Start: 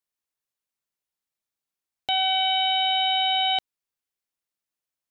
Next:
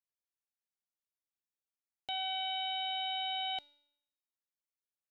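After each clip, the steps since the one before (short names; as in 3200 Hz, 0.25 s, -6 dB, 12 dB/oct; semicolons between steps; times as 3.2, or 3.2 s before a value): resonator 290 Hz, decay 0.77 s, mix 70%; gain -3.5 dB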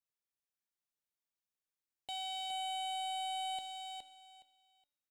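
overloaded stage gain 34.5 dB; on a send: feedback echo 0.417 s, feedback 21%, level -5 dB; on the sum: gain -2.5 dB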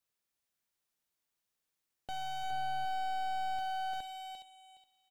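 echo 0.347 s -8 dB; slew limiter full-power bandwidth 7.6 Hz; gain +6.5 dB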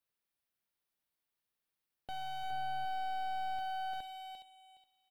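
bell 6900 Hz -9 dB 0.62 oct; gain -2 dB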